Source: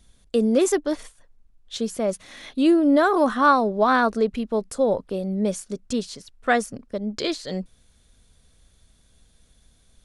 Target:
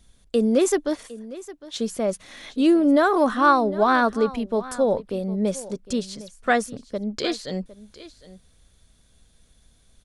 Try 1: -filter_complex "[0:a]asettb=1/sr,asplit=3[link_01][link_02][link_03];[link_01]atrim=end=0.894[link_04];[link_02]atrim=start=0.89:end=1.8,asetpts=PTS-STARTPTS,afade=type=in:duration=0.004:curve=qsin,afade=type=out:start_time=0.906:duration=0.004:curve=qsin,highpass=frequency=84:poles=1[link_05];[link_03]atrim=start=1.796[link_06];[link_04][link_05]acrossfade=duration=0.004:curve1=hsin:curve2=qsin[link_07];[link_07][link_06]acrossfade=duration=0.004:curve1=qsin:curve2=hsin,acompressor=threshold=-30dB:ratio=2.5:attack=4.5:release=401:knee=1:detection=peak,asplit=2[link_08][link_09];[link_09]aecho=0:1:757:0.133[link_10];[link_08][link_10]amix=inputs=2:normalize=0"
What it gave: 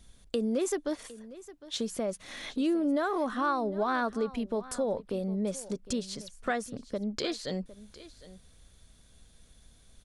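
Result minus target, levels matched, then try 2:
downward compressor: peak gain reduction +13 dB
-filter_complex "[0:a]asettb=1/sr,asplit=3[link_01][link_02][link_03];[link_01]atrim=end=0.894[link_04];[link_02]atrim=start=0.89:end=1.8,asetpts=PTS-STARTPTS,afade=type=in:duration=0.004:curve=qsin,afade=type=out:start_time=0.906:duration=0.004:curve=qsin,highpass=frequency=84:poles=1[link_05];[link_03]atrim=start=1.796[link_06];[link_04][link_05]acrossfade=duration=0.004:curve1=hsin:curve2=qsin[link_07];[link_07][link_06]acrossfade=duration=0.004:curve1=qsin:curve2=hsin,asplit=2[link_08][link_09];[link_09]aecho=0:1:757:0.133[link_10];[link_08][link_10]amix=inputs=2:normalize=0"

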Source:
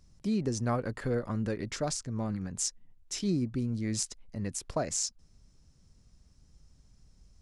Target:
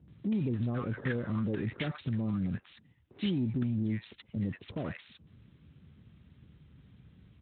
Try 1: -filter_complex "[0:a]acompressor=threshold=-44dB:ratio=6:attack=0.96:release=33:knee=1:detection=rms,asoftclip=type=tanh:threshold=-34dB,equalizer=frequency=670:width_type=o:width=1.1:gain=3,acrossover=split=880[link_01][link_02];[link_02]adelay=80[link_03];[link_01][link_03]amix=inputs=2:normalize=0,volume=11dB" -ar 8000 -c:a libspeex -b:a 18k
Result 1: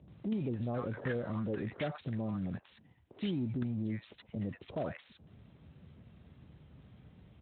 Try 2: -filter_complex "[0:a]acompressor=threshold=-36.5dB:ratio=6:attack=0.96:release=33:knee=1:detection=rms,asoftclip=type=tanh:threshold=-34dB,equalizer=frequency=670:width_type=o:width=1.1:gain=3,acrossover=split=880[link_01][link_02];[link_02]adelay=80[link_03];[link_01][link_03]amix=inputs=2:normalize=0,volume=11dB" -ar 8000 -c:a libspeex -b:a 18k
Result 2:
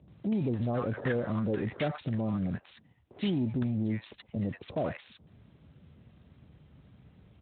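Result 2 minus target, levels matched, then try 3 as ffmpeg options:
500 Hz band +5.0 dB
-filter_complex "[0:a]acompressor=threshold=-36.5dB:ratio=6:attack=0.96:release=33:knee=1:detection=rms,asoftclip=type=tanh:threshold=-34dB,equalizer=frequency=670:width_type=o:width=1.1:gain=-8,acrossover=split=880[link_01][link_02];[link_02]adelay=80[link_03];[link_01][link_03]amix=inputs=2:normalize=0,volume=11dB" -ar 8000 -c:a libspeex -b:a 18k

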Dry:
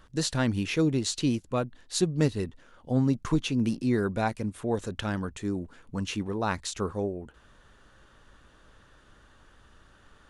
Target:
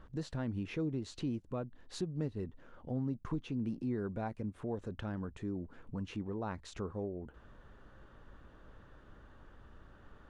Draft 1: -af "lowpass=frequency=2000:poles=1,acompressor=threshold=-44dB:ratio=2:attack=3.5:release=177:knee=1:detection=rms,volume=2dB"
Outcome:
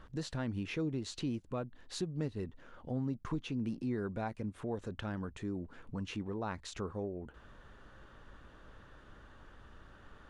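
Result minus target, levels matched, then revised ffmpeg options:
2,000 Hz band +3.5 dB
-af "lowpass=frequency=880:poles=1,acompressor=threshold=-44dB:ratio=2:attack=3.5:release=177:knee=1:detection=rms,volume=2dB"

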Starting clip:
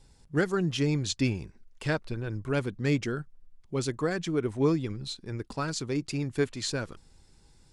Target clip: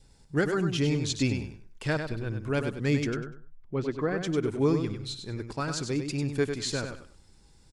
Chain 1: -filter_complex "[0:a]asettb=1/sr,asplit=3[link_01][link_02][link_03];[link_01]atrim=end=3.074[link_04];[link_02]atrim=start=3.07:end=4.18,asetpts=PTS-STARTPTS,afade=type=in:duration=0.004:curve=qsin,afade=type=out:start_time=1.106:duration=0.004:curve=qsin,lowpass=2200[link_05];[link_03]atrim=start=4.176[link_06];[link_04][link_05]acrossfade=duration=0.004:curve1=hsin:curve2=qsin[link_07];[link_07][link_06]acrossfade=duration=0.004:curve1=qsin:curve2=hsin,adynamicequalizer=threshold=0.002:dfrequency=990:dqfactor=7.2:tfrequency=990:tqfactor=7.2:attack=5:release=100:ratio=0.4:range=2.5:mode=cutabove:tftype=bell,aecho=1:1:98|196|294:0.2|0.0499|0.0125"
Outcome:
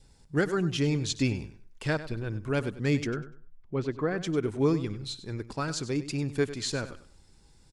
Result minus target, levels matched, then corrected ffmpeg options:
echo-to-direct −7 dB
-filter_complex "[0:a]asettb=1/sr,asplit=3[link_01][link_02][link_03];[link_01]atrim=end=3.074[link_04];[link_02]atrim=start=3.07:end=4.18,asetpts=PTS-STARTPTS,afade=type=in:duration=0.004:curve=qsin,afade=type=out:start_time=1.106:duration=0.004:curve=qsin,lowpass=2200[link_05];[link_03]atrim=start=4.176[link_06];[link_04][link_05]acrossfade=duration=0.004:curve1=hsin:curve2=qsin[link_07];[link_07][link_06]acrossfade=duration=0.004:curve1=qsin:curve2=hsin,adynamicequalizer=threshold=0.002:dfrequency=990:dqfactor=7.2:tfrequency=990:tqfactor=7.2:attack=5:release=100:ratio=0.4:range=2.5:mode=cutabove:tftype=bell,aecho=1:1:98|196|294:0.447|0.112|0.0279"

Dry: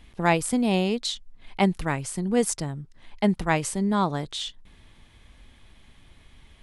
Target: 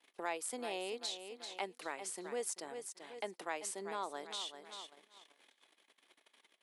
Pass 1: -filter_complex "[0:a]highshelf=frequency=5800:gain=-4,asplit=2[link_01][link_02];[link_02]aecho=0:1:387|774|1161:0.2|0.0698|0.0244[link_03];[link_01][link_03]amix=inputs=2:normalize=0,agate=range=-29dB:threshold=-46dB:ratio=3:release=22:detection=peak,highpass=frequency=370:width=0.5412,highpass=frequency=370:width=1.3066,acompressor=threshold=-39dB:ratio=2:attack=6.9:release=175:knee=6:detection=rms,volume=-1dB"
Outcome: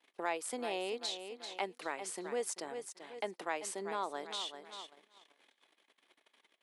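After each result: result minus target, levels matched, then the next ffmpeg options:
downward compressor: peak gain reduction −3.5 dB; 8,000 Hz band −2.5 dB
-filter_complex "[0:a]highshelf=frequency=5800:gain=-4,asplit=2[link_01][link_02];[link_02]aecho=0:1:387|774|1161:0.2|0.0698|0.0244[link_03];[link_01][link_03]amix=inputs=2:normalize=0,agate=range=-29dB:threshold=-46dB:ratio=3:release=22:detection=peak,highpass=frequency=370:width=0.5412,highpass=frequency=370:width=1.3066,acompressor=threshold=-45.5dB:ratio=2:attack=6.9:release=175:knee=6:detection=rms,volume=-1dB"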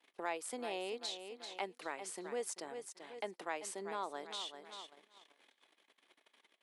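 8,000 Hz band −2.5 dB
-filter_complex "[0:a]highshelf=frequency=5800:gain=3,asplit=2[link_01][link_02];[link_02]aecho=0:1:387|774|1161:0.2|0.0698|0.0244[link_03];[link_01][link_03]amix=inputs=2:normalize=0,agate=range=-29dB:threshold=-46dB:ratio=3:release=22:detection=peak,highpass=frequency=370:width=0.5412,highpass=frequency=370:width=1.3066,acompressor=threshold=-45.5dB:ratio=2:attack=6.9:release=175:knee=6:detection=rms,volume=-1dB"

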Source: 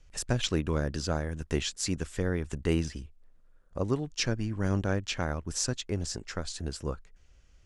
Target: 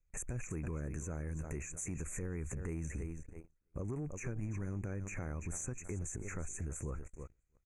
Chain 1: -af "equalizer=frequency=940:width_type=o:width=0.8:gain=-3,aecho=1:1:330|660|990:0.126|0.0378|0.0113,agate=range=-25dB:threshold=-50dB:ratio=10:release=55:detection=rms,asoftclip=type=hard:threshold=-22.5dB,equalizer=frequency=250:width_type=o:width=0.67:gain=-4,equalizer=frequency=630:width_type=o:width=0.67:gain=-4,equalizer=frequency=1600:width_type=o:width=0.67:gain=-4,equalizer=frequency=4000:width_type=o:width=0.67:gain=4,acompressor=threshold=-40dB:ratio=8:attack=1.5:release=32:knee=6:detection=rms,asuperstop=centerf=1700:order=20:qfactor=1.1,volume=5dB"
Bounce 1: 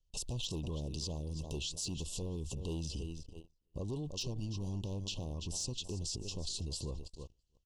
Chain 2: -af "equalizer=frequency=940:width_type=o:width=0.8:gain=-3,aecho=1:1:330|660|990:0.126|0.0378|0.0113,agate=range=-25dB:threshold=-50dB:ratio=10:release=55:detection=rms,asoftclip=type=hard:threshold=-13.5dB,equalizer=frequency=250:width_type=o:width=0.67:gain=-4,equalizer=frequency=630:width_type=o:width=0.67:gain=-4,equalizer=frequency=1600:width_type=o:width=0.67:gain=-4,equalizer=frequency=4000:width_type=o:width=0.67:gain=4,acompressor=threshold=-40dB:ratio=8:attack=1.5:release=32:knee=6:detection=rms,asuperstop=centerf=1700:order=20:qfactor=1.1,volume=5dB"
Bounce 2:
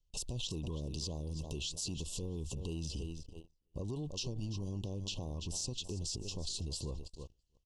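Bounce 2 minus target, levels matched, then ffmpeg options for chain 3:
2,000 Hz band −8.5 dB
-af "equalizer=frequency=940:width_type=o:width=0.8:gain=-3,aecho=1:1:330|660|990:0.126|0.0378|0.0113,agate=range=-25dB:threshold=-50dB:ratio=10:release=55:detection=rms,asoftclip=type=hard:threshold=-13.5dB,equalizer=frequency=250:width_type=o:width=0.67:gain=-4,equalizer=frequency=630:width_type=o:width=0.67:gain=-4,equalizer=frequency=1600:width_type=o:width=0.67:gain=-4,equalizer=frequency=4000:width_type=o:width=0.67:gain=4,acompressor=threshold=-40dB:ratio=8:attack=1.5:release=32:knee=6:detection=rms,asuperstop=centerf=4000:order=20:qfactor=1.1,volume=5dB"

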